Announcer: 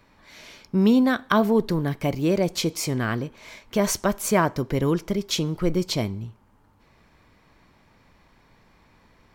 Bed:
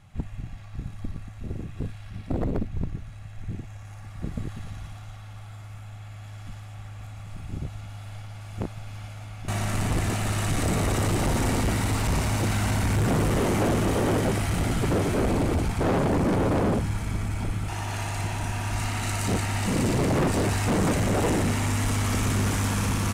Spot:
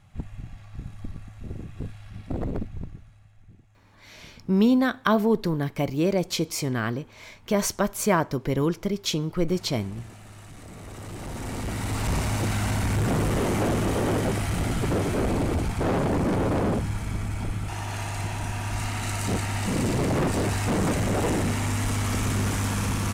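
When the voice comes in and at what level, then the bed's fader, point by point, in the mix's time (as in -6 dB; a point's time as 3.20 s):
3.75 s, -1.5 dB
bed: 2.61 s -2.5 dB
3.56 s -19 dB
10.68 s -19 dB
12.09 s -1 dB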